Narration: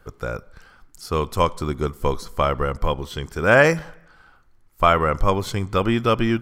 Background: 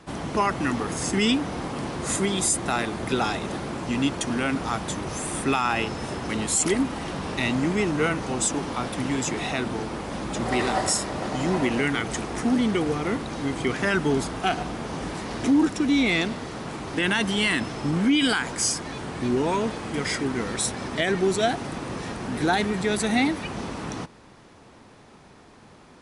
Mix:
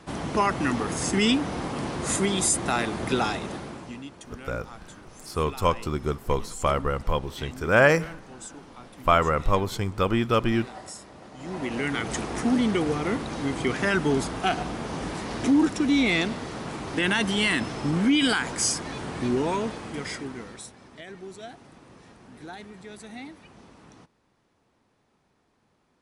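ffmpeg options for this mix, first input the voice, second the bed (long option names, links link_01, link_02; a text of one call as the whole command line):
ffmpeg -i stem1.wav -i stem2.wav -filter_complex "[0:a]adelay=4250,volume=-3.5dB[link_01];[1:a]volume=16.5dB,afade=type=out:start_time=3.16:duration=0.87:silence=0.141254,afade=type=in:start_time=11.36:duration=0.79:silence=0.149624,afade=type=out:start_time=19.21:duration=1.5:silence=0.125893[link_02];[link_01][link_02]amix=inputs=2:normalize=0" out.wav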